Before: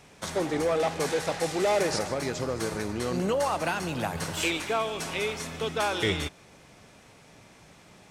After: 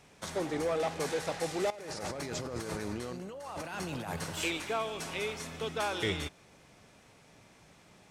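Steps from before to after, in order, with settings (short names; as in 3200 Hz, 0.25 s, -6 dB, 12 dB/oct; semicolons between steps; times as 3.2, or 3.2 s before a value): 1.7–4.16 negative-ratio compressor -34 dBFS, ratio -1; gain -5.5 dB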